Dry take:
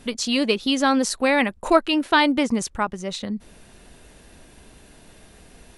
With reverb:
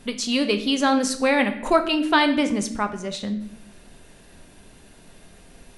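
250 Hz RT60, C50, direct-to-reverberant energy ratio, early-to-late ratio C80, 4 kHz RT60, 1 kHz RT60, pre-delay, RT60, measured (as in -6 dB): 1.0 s, 11.0 dB, 7.0 dB, 13.5 dB, 0.60 s, 0.55 s, 4 ms, 0.65 s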